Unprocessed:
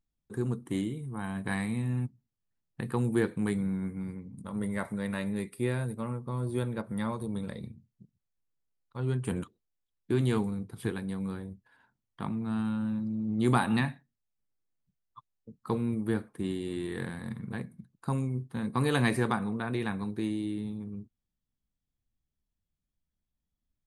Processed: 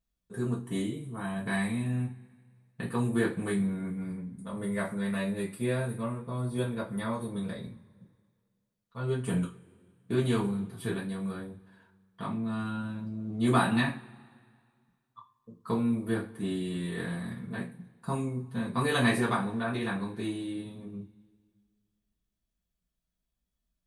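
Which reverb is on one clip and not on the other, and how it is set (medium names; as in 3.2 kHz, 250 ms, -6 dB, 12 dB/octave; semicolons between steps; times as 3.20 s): two-slope reverb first 0.26 s, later 2 s, from -27 dB, DRR -7 dB; trim -5.5 dB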